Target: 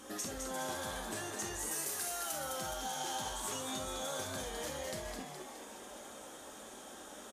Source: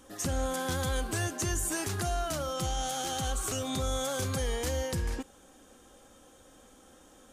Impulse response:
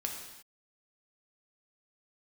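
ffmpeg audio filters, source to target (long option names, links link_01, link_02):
-filter_complex "[0:a]asettb=1/sr,asplit=3[link_01][link_02][link_03];[link_01]atrim=end=1.714[link_04];[link_02]atrim=start=1.71:end=2.32,asetpts=PTS-STARTPTS,afade=type=in:duration=0.004:curve=qsin,afade=type=out:start_time=0.606:duration=0.004:curve=qsin,aemphasis=mode=production:type=bsi[link_05];[link_03]atrim=start=2.316[link_06];[link_04][link_05]acrossfade=duration=0.004:curve1=hsin:curve2=qsin[link_07];[link_07][link_06]acrossfade=duration=0.004:curve1=qsin:curve2=hsin,acompressor=threshold=-44dB:ratio=6,highpass=frequency=240:poles=1,asplit=9[link_08][link_09][link_10][link_11][link_12][link_13][link_14][link_15][link_16];[link_09]adelay=209,afreqshift=100,volume=-5dB[link_17];[link_10]adelay=418,afreqshift=200,volume=-9.6dB[link_18];[link_11]adelay=627,afreqshift=300,volume=-14.2dB[link_19];[link_12]adelay=836,afreqshift=400,volume=-18.7dB[link_20];[link_13]adelay=1045,afreqshift=500,volume=-23.3dB[link_21];[link_14]adelay=1254,afreqshift=600,volume=-27.9dB[link_22];[link_15]adelay=1463,afreqshift=700,volume=-32.5dB[link_23];[link_16]adelay=1672,afreqshift=800,volume=-37.1dB[link_24];[link_08][link_17][link_18][link_19][link_20][link_21][link_22][link_23][link_24]amix=inputs=9:normalize=0[link_25];[1:a]atrim=start_sample=2205,atrim=end_sample=3528[link_26];[link_25][link_26]afir=irnorm=-1:irlink=0,volume=6dB" -ar 32000 -c:a libmp3lame -b:a 80k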